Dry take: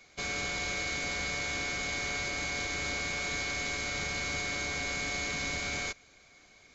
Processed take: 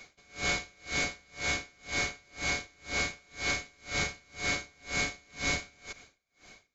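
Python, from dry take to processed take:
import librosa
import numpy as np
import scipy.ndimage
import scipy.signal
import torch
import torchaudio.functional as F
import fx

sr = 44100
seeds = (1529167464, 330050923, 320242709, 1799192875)

y = fx.rider(x, sr, range_db=10, speed_s=2.0)
y = y * 10.0 ** (-34 * (0.5 - 0.5 * np.cos(2.0 * np.pi * 2.0 * np.arange(len(y)) / sr)) / 20.0)
y = F.gain(torch.from_numpy(y), 6.0).numpy()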